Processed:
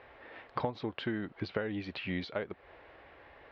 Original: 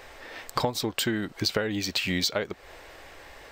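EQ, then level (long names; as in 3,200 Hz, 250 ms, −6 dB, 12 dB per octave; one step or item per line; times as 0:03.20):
high-pass filter 55 Hz
Bessel low-pass filter 2,200 Hz, order 6
−6.5 dB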